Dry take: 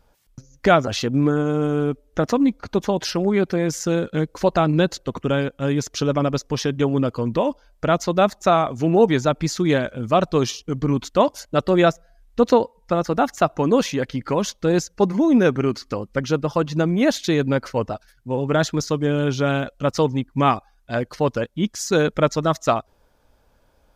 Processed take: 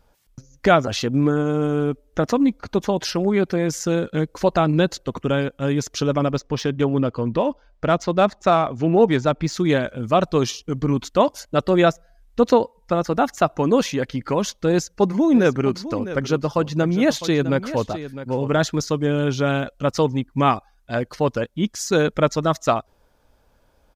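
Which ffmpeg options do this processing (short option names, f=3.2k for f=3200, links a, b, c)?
-filter_complex "[0:a]asettb=1/sr,asplit=3[a][b][c];[a]atrim=end=6.324[d];[b]atrim=start=6.32:end=9.54,asetpts=PTS-STARTPTS,afade=t=in:d=0.004:c=qsin,afade=t=out:st=3.216:d=0.004:c=qsin,adynamicsmooth=sensitivity=1.5:basefreq=4.9k[e];[c]atrim=start=9.536[f];[d][e]acrossfade=d=0.004:c1=hsin:c2=qsin[g];[g][f]acrossfade=d=0.004:c1=qsin:c2=hsin,asplit=3[h][i][j];[h]afade=t=out:st=15.33:d=0.02[k];[i]aecho=1:1:656:0.224,afade=t=in:st=15.33:d=0.02,afade=t=out:st=18.84:d=0.02[l];[j]afade=t=in:st=18.84:d=0.02[m];[k][l][m]amix=inputs=3:normalize=0"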